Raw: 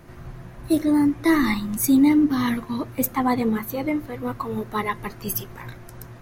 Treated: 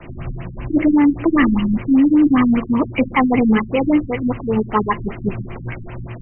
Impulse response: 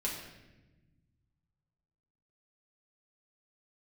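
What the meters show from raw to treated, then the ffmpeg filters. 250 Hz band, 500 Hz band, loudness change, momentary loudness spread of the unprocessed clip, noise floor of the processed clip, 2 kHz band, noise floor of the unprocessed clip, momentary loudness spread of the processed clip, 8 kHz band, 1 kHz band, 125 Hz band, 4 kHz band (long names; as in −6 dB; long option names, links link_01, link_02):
+6.0 dB, +6.5 dB, +5.5 dB, 22 LU, −33 dBFS, +5.0 dB, −42 dBFS, 17 LU, below −40 dB, +5.5 dB, +8.0 dB, +0.5 dB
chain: -filter_complex "[0:a]adynamicequalizer=threshold=0.00708:dfrequency=130:dqfactor=2.3:tfrequency=130:tqfactor=2.3:attack=5:release=100:ratio=0.375:range=2:mode=cutabove:tftype=bell,apsyclip=19dB,aeval=exprs='val(0)+0.0282*sin(2*PI*5100*n/s)':channel_layout=same,acrossover=split=390|740|3200[link_01][link_02][link_03][link_04];[link_03]aexciter=amount=7.2:drive=6.3:freq=2400[link_05];[link_01][link_02][link_05][link_04]amix=inputs=4:normalize=0,afftfilt=real='re*lt(b*sr/1024,270*pow(3200/270,0.5+0.5*sin(2*PI*5.1*pts/sr)))':imag='im*lt(b*sr/1024,270*pow(3200/270,0.5+0.5*sin(2*PI*5.1*pts/sr)))':win_size=1024:overlap=0.75,volume=-8dB"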